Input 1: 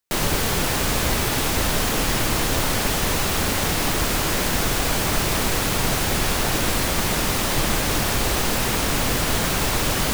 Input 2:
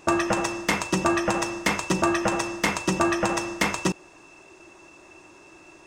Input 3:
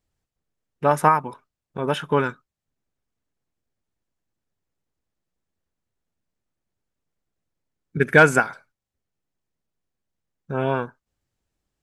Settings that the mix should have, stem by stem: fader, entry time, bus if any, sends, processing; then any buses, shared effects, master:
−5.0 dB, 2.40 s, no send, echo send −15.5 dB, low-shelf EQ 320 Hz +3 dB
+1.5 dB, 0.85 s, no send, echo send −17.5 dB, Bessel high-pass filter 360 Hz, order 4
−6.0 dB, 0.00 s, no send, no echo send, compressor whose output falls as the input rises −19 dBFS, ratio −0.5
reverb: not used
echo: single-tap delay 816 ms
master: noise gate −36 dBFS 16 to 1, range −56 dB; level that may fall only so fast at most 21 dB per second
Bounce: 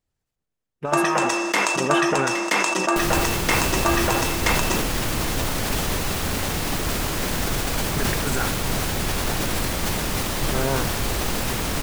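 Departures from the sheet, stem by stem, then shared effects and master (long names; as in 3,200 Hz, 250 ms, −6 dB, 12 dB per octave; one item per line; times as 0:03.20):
stem 1: entry 2.40 s → 2.85 s
master: missing noise gate −36 dBFS 16 to 1, range −56 dB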